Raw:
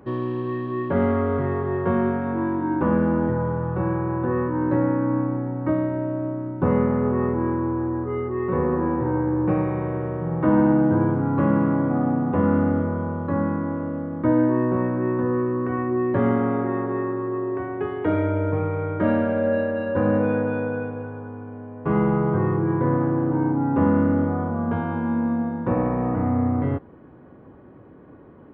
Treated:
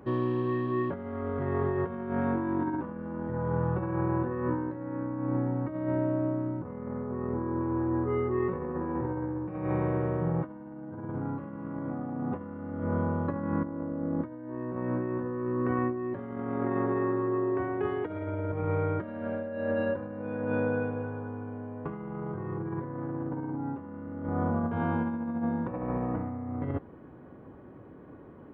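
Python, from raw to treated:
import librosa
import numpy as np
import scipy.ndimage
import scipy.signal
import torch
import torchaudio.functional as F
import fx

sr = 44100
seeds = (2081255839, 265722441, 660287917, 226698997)

y = fx.lowpass(x, sr, hz=fx.line((6.59, 2300.0), (7.59, 1600.0)), slope=12, at=(6.59, 7.59), fade=0.02)
y = fx.peak_eq(y, sr, hz=340.0, db=7.0, octaves=2.9, at=(13.64, 14.21))
y = fx.over_compress(y, sr, threshold_db=-25.0, ratio=-0.5)
y = y * librosa.db_to_amplitude(-5.5)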